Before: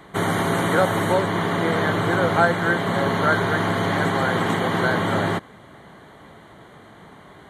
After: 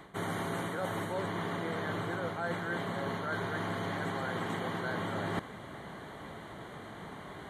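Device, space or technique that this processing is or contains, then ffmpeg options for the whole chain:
compression on the reversed sound: -af "areverse,acompressor=threshold=-32dB:ratio=12,areverse"

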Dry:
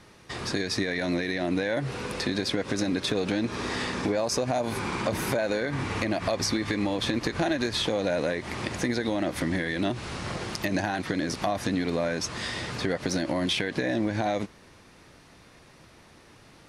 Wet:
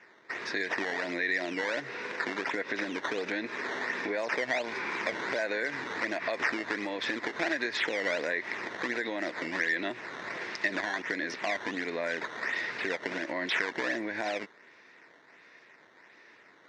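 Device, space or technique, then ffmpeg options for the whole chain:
circuit-bent sampling toy: -af "acrusher=samples=10:mix=1:aa=0.000001:lfo=1:lforange=16:lforate=1.4,highpass=520,equalizer=f=550:t=q:w=4:g=-5,equalizer=f=780:t=q:w=4:g=-8,equalizer=f=1.2k:t=q:w=4:g=-7,equalizer=f=1.9k:t=q:w=4:g=7,equalizer=f=3.1k:t=q:w=4:g=-8,equalizer=f=4.4k:t=q:w=4:g=-6,lowpass=f=4.8k:w=0.5412,lowpass=f=4.8k:w=1.3066,volume=1.5dB"

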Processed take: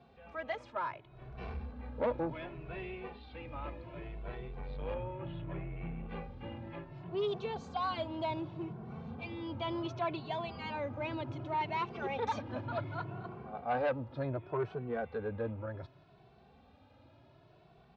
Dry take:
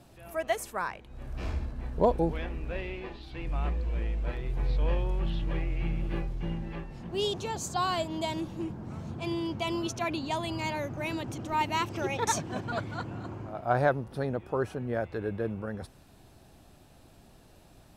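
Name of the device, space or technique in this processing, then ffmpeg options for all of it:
barber-pole flanger into a guitar amplifier: -filter_complex "[0:a]asplit=2[a][b];[b]adelay=2.2,afreqshift=0.67[c];[a][c]amix=inputs=2:normalize=1,asoftclip=type=tanh:threshold=-26.5dB,highpass=92,equalizer=f=190:t=q:w=4:g=-6,equalizer=f=320:t=q:w=4:g=-5,equalizer=f=1.8k:t=q:w=4:g=-5,equalizer=f=2.9k:t=q:w=4:g=-4,lowpass=f=3.5k:w=0.5412,lowpass=f=3.5k:w=1.3066,asettb=1/sr,asplit=3[d][e][f];[d]atrim=end=4.944[g];[e]atrim=start=4.94:end=6.09,asetpts=PTS-STARTPTS,afade=t=in:d=0.004:c=qsin,afade=t=out:st=1.146:d=0.004:c=qsin,lowpass=2.4k[h];[f]atrim=start=6.086[i];[g][h]acrossfade=d=0.004:c1=hsin:c2=qsin[j];[j][i]acrossfade=d=0.004:c1=qsin:c2=hsin,volume=1dB"

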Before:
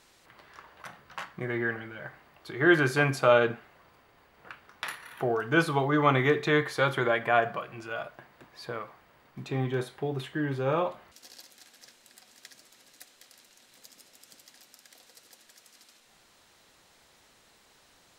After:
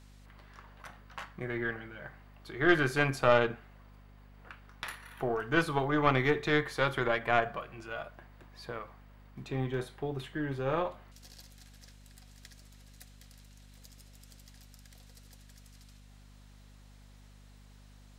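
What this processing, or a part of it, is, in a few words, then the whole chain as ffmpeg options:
valve amplifier with mains hum: -af "aeval=exprs='(tanh(3.98*val(0)+0.75)-tanh(0.75))/3.98':c=same,aeval=exprs='val(0)+0.002*(sin(2*PI*50*n/s)+sin(2*PI*2*50*n/s)/2+sin(2*PI*3*50*n/s)/3+sin(2*PI*4*50*n/s)/4+sin(2*PI*5*50*n/s)/5)':c=same"

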